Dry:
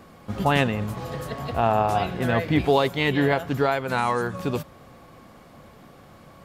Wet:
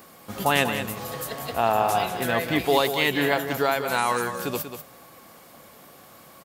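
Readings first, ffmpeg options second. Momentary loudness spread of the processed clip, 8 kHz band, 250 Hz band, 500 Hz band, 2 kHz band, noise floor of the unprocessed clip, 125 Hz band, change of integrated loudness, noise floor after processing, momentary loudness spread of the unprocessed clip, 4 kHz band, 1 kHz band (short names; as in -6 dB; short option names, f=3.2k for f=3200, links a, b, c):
10 LU, +10.5 dB, -3.5 dB, -1.0 dB, +2.0 dB, -49 dBFS, -8.0 dB, -0.5 dB, -50 dBFS, 11 LU, +4.0 dB, 0.0 dB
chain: -af "aemphasis=mode=production:type=bsi,aecho=1:1:190:0.355"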